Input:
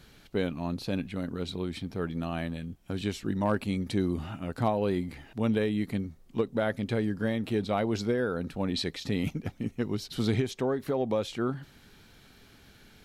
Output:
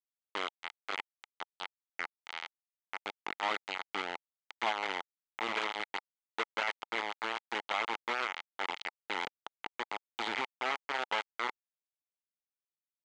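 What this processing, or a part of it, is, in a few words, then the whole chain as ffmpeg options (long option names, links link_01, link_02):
hand-held game console: -af "acrusher=bits=3:mix=0:aa=0.000001,highpass=490,equalizer=frequency=560:width_type=q:width=4:gain=-4,equalizer=frequency=860:width_type=q:width=4:gain=8,equalizer=frequency=1300:width_type=q:width=4:gain=6,equalizer=frequency=2100:width_type=q:width=4:gain=10,equalizer=frequency=3100:width_type=q:width=4:gain=6,equalizer=frequency=5400:width_type=q:width=4:gain=-7,lowpass=frequency=5800:width=0.5412,lowpass=frequency=5800:width=1.3066,volume=-8.5dB"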